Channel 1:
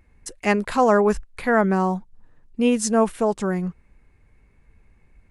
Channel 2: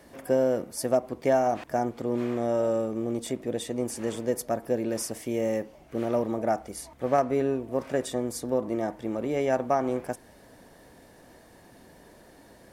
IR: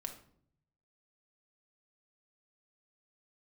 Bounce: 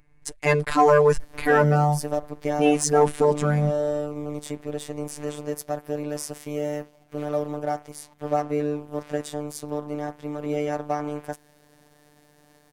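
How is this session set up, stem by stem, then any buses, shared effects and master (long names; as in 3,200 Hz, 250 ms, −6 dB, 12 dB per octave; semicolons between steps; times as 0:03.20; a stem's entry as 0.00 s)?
+0.5 dB, 0.00 s, no send, no processing
−2.0 dB, 1.20 s, no send, no processing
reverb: not used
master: phases set to zero 148 Hz; leveller curve on the samples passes 1; low-shelf EQ 190 Hz +2.5 dB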